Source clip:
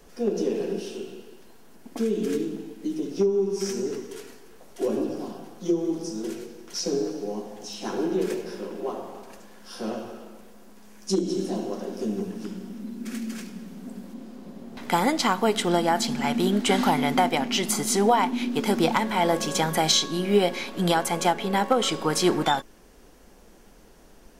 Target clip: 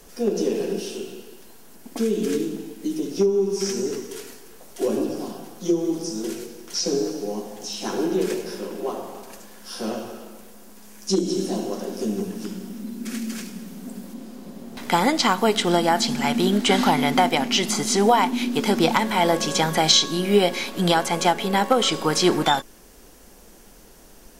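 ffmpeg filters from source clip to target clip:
ffmpeg -i in.wav -filter_complex "[0:a]aemphasis=mode=production:type=cd,acrossover=split=6300[link_01][link_02];[link_02]acompressor=threshold=-42dB:ratio=4:attack=1:release=60[link_03];[link_01][link_03]amix=inputs=2:normalize=0,volume=3dB" out.wav

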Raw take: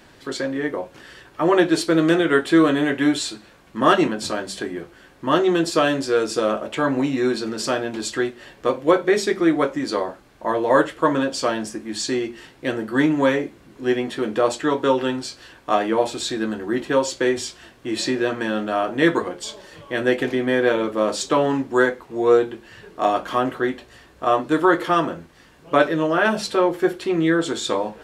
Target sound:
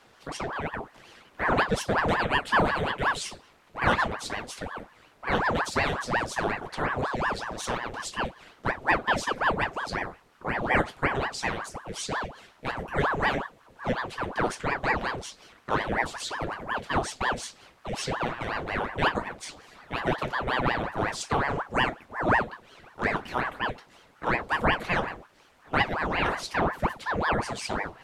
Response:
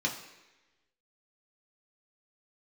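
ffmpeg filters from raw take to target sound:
-af "aeval=exprs='val(0)*sin(2*PI*770*n/s+770*0.85/5.5*sin(2*PI*5.5*n/s))':channel_layout=same,volume=-5dB"

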